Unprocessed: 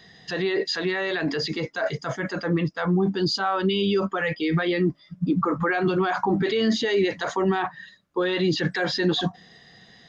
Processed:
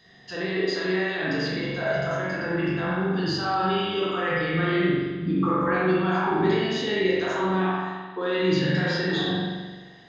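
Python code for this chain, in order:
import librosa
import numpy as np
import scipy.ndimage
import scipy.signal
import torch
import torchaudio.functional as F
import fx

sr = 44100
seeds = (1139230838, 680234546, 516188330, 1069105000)

y = fx.spec_trails(x, sr, decay_s=0.57)
y = fx.rev_spring(y, sr, rt60_s=1.4, pass_ms=(43,), chirp_ms=75, drr_db=-5.5)
y = F.gain(torch.from_numpy(y), -8.0).numpy()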